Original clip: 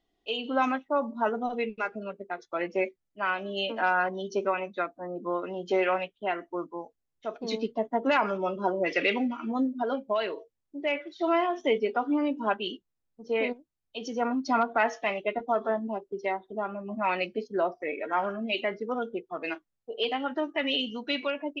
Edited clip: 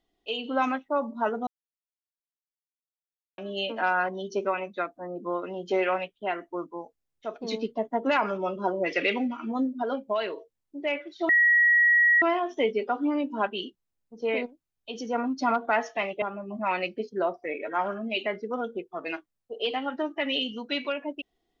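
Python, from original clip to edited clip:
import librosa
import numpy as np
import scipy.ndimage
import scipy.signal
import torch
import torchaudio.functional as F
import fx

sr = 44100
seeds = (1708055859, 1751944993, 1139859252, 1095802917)

y = fx.edit(x, sr, fx.silence(start_s=1.47, length_s=1.91),
    fx.insert_tone(at_s=11.29, length_s=0.93, hz=1910.0, db=-16.5),
    fx.cut(start_s=15.29, length_s=1.31), tone=tone)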